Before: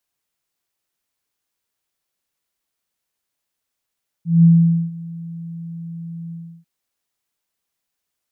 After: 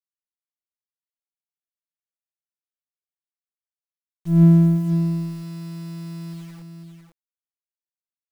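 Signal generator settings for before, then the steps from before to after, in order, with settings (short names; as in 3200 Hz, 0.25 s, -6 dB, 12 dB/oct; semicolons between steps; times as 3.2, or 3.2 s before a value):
ADSR sine 167 Hz, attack 0.184 s, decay 0.472 s, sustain -22 dB, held 2.07 s, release 0.325 s -6 dBFS
minimum comb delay 0.88 ms; requantised 8-bit, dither none; echo 0.501 s -7.5 dB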